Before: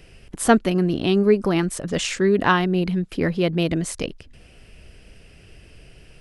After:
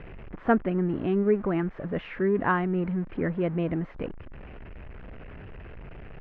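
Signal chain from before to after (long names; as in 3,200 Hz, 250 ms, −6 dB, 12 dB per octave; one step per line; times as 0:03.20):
converter with a step at zero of −30 dBFS
inverse Chebyshev low-pass filter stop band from 10,000 Hz, stop band 80 dB
level −7 dB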